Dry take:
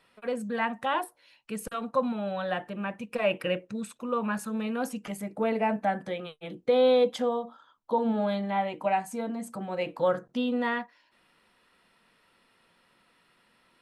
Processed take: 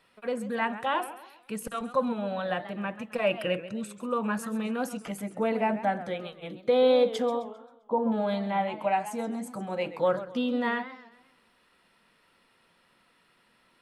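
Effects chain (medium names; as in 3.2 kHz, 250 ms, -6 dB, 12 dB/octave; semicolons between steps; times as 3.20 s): 7.42–8.12 s: low-pass 1.2 kHz 12 dB/octave; modulated delay 132 ms, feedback 41%, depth 178 cents, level -14 dB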